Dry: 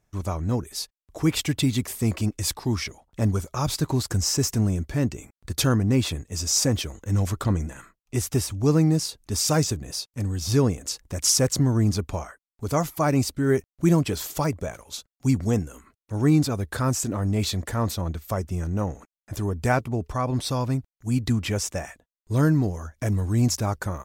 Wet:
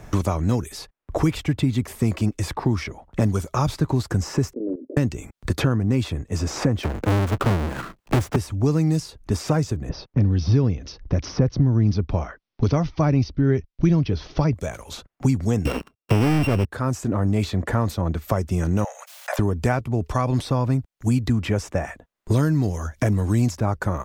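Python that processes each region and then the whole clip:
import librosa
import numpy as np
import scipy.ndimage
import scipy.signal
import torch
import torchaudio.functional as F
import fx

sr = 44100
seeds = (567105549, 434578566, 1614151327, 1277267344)

y = fx.chain(x, sr, fx.cheby1_bandpass(low_hz=260.0, high_hz=580.0, order=4),
    fx.level_steps(step_db=17), at=(4.53, 4.97))
y = fx.chain(y, sr, fx.halfwave_hold(),
    fx.band_squash(depth_pct=40), at=(6.83, 8.36))
y = fx.chain(y, sr, fx.steep_lowpass(hz=6000.0, slope=96),
    fx.tilt_eq(slope=-3.0), at=(9.89, 14.54))
y = fx.chain(y, sr, fx.sample_sort(block=16),
    fx.peak_eq(hz=1800.0, db=-13.5, octaves=0.27),
    fx.leveller(passes=5), at=(15.65, 16.65))
y = fx.chain(y, sr, fx.steep_highpass(hz=530.0, slope=72),
    fx.pre_swell(db_per_s=71.0), at=(18.84, 19.39))
y = fx.high_shelf(y, sr, hz=3600.0, db=-10.5)
y = fx.band_squash(y, sr, depth_pct=100)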